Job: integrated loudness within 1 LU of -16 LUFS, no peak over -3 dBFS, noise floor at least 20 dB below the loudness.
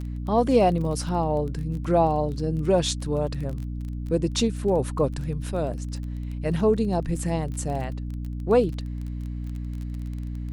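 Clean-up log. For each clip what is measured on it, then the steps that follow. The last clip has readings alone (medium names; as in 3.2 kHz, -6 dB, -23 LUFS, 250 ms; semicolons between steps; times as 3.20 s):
tick rate 20 per s; hum 60 Hz; highest harmonic 300 Hz; hum level -29 dBFS; loudness -26.0 LUFS; peak level -7.5 dBFS; loudness target -16.0 LUFS
-> de-click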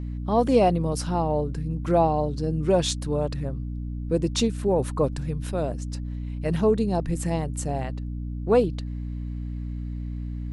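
tick rate 0 per s; hum 60 Hz; highest harmonic 300 Hz; hum level -29 dBFS
-> hum notches 60/120/180/240/300 Hz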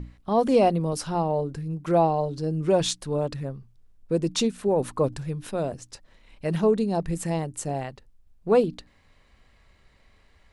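hum not found; loudness -25.5 LUFS; peak level -9.0 dBFS; loudness target -16.0 LUFS
-> trim +9.5 dB; peak limiter -3 dBFS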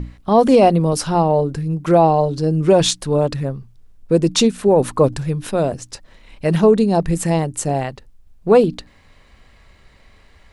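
loudness -16.5 LUFS; peak level -3.0 dBFS; noise floor -50 dBFS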